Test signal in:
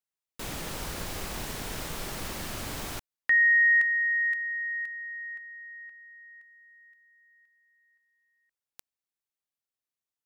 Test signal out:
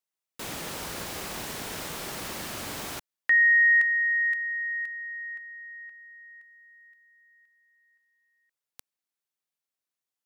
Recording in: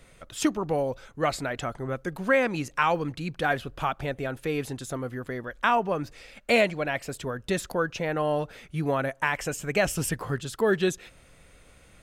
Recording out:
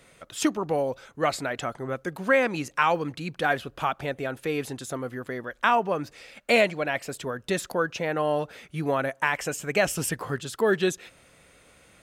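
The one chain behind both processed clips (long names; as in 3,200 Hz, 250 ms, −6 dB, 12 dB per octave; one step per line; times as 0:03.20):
high-pass filter 180 Hz 6 dB per octave
level +1.5 dB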